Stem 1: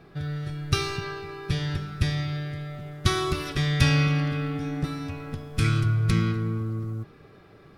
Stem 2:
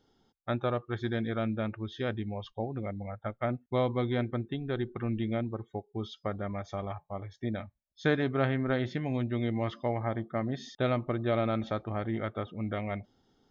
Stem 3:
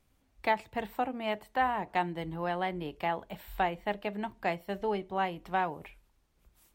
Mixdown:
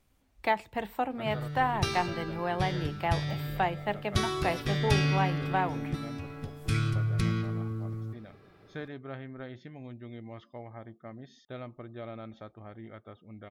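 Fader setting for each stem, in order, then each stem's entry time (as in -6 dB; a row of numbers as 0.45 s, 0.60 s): -5.5 dB, -13.0 dB, +1.0 dB; 1.10 s, 0.70 s, 0.00 s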